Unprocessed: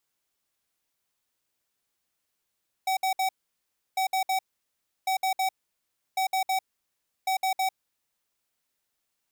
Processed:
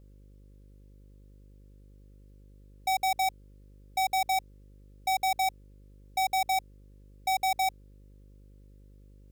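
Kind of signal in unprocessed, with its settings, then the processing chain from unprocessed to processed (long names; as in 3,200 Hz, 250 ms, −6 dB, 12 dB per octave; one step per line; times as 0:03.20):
beeps in groups square 760 Hz, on 0.10 s, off 0.06 s, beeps 3, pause 0.68 s, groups 5, −25.5 dBFS
hum with harmonics 50 Hz, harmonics 11, −54 dBFS −7 dB per octave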